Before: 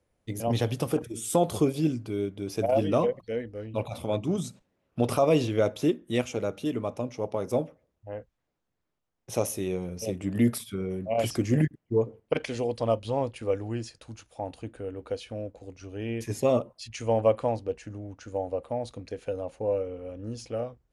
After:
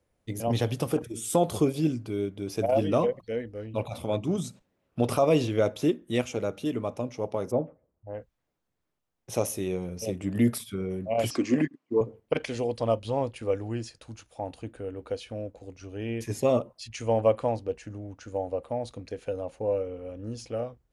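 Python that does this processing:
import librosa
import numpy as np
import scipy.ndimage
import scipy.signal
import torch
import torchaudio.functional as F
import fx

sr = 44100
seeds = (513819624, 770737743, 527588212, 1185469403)

y = fx.lowpass(x, sr, hz=1200.0, slope=12, at=(7.5, 8.13), fade=0.02)
y = fx.cabinet(y, sr, low_hz=270.0, low_slope=12, high_hz=7800.0, hz=(270.0, 1100.0, 2500.0, 4400.0), db=(9, 9, 5, 4), at=(11.31, 12.01))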